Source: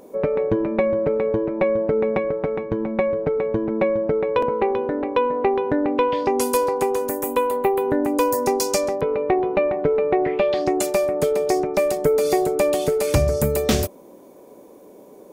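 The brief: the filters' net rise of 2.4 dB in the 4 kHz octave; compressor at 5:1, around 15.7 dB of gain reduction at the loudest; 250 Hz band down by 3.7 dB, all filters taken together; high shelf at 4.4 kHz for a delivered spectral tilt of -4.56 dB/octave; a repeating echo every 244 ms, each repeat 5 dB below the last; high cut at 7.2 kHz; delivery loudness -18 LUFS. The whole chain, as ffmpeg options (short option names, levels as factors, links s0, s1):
-af "lowpass=7200,equalizer=f=250:t=o:g=-5.5,equalizer=f=4000:t=o:g=8.5,highshelf=f=4400:g=-8.5,acompressor=threshold=0.0178:ratio=5,aecho=1:1:244|488|732|976|1220|1464|1708:0.562|0.315|0.176|0.0988|0.0553|0.031|0.0173,volume=7.5"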